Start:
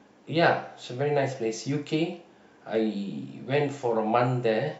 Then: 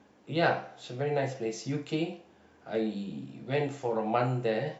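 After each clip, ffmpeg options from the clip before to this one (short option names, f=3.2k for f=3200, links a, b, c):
-af "equalizer=f=81:t=o:w=0.47:g=12,volume=-4.5dB"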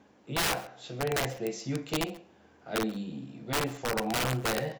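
-af "aeval=exprs='(mod(13.3*val(0)+1,2)-1)/13.3':c=same,aecho=1:1:134:0.0841"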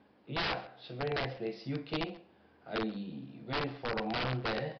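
-af "aresample=11025,aresample=44100,volume=-4dB"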